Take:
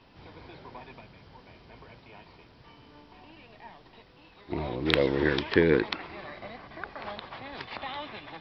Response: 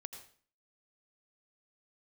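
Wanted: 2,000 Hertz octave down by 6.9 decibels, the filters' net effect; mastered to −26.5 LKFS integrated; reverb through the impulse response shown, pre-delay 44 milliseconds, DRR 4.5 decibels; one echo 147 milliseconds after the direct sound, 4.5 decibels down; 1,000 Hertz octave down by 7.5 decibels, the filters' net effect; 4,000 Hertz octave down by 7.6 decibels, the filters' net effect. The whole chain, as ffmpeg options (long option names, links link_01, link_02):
-filter_complex "[0:a]equalizer=frequency=1000:width_type=o:gain=-8.5,equalizer=frequency=2000:width_type=o:gain=-4,equalizer=frequency=4000:width_type=o:gain=-7.5,aecho=1:1:147:0.596,asplit=2[link_01][link_02];[1:a]atrim=start_sample=2205,adelay=44[link_03];[link_02][link_03]afir=irnorm=-1:irlink=0,volume=-0.5dB[link_04];[link_01][link_04]amix=inputs=2:normalize=0,volume=1.5dB"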